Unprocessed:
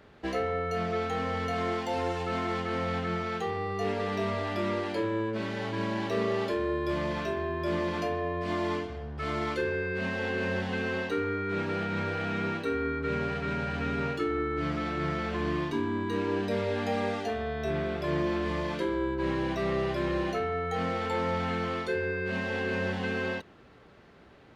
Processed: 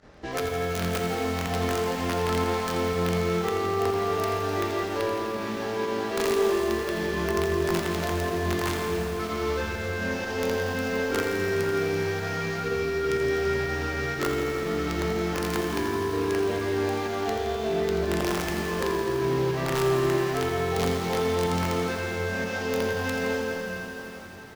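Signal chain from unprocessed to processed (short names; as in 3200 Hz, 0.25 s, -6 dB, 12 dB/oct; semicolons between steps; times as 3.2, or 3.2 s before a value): median filter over 15 samples; low shelf 86 Hz +4.5 dB; feedback echo 0.2 s, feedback 45%, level -16 dB; in parallel at +2 dB: compressor 10:1, threshold -40 dBFS, peak gain reduction 15.5 dB; on the sum: LPF 5400 Hz 12 dB/oct; high shelf 3300 Hz +10.5 dB; doubler 23 ms -3 dB; de-hum 47.76 Hz, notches 35; pump 123 bpm, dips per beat 1, -15 dB, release 61 ms; wrapped overs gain 16 dB; reverb RT60 4.7 s, pre-delay 13 ms, DRR 1.5 dB; lo-fi delay 84 ms, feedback 80%, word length 7-bit, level -9 dB; gain -4 dB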